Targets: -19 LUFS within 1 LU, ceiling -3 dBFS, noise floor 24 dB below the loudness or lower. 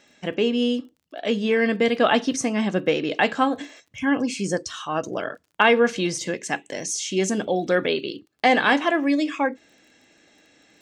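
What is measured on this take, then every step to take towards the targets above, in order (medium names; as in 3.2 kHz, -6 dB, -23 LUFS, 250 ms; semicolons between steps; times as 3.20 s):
tick rate 28 per s; loudness -23.0 LUFS; peak level -3.5 dBFS; loudness target -19.0 LUFS
-> de-click; trim +4 dB; peak limiter -3 dBFS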